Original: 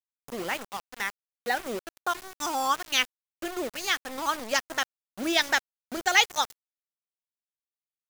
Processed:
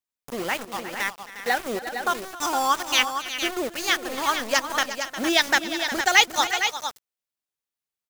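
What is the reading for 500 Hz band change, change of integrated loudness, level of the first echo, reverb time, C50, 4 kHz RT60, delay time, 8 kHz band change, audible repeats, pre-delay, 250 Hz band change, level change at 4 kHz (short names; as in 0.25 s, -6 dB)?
+5.0 dB, +4.5 dB, -17.0 dB, none, none, none, 0.267 s, +5.0 dB, 3, none, +5.0 dB, +5.0 dB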